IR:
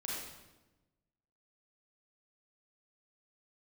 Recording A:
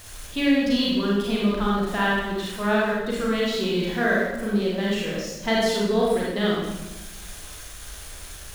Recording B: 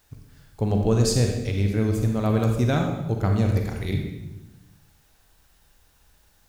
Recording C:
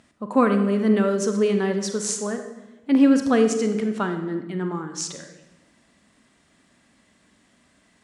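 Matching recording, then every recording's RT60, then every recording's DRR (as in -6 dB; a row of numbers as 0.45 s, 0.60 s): A; 1.1 s, 1.1 s, 1.1 s; -5.5 dB, 2.0 dB, 6.5 dB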